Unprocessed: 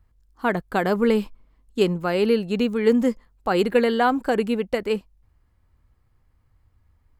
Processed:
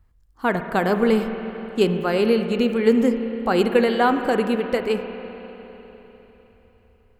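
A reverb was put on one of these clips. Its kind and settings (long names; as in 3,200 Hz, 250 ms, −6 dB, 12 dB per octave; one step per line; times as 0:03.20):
spring reverb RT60 3.9 s, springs 31/50 ms, chirp 70 ms, DRR 6.5 dB
level +1 dB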